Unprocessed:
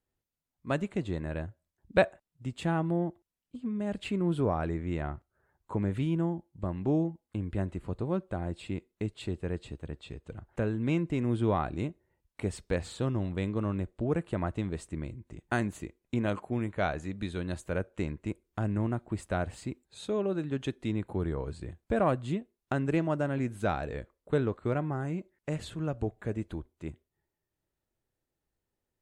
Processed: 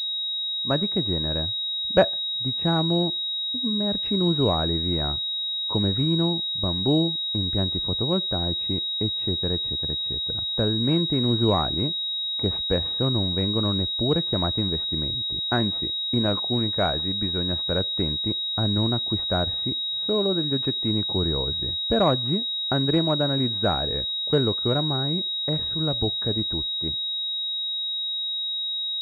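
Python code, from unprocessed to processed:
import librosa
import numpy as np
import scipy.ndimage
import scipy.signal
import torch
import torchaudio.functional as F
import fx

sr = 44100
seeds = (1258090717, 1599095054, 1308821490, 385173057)

y = fx.env_lowpass(x, sr, base_hz=1200.0, full_db=-27.0)
y = fx.pwm(y, sr, carrier_hz=3800.0)
y = y * 10.0 ** (6.0 / 20.0)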